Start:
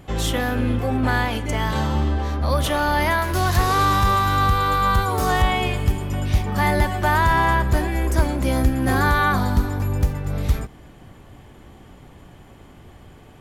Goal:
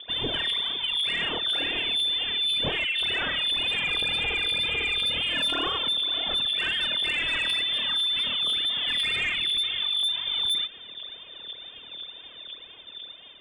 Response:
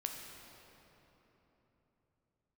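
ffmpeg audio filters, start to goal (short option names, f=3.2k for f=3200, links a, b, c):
-filter_complex "[0:a]asettb=1/sr,asplit=3[a][b][c];[a]atrim=end=2.844[d];[b]atrim=start=2.84:end=5.2,asetpts=PTS-STARTPTS,afade=t=in:d=0.004:c=qsin,afade=t=out:st=2.356:d=0.004:c=qsin,acrossover=split=190|1600[e][f][g];[e]adelay=90[h];[g]adelay=160[i];[h][f][i]amix=inputs=3:normalize=0,atrim=end_sample=104076[j];[c]atrim=start=5.196[k];[d][j]acrossfade=d=0.004:c1=hsin:c2=qsin[l];[l][k]acrossfade=d=0.004:c1=qsin:c2=hsin,aphaser=in_gain=1:out_gain=1:delay=2.9:decay=0.8:speed=2:type=triangular,lowpass=f=3.1k:t=q:w=0.5098,lowpass=f=3.1k:t=q:w=0.6013,lowpass=f=3.1k:t=q:w=0.9,lowpass=f=3.1k:t=q:w=2.563,afreqshift=-3600,asoftclip=type=tanh:threshold=-5.5dB,dynaudnorm=f=740:g=5:m=11.5dB,alimiter=limit=-10dB:level=0:latency=1:release=10,tiltshelf=f=720:g=8,acompressor=threshold=-24dB:ratio=2,volume=-1.5dB"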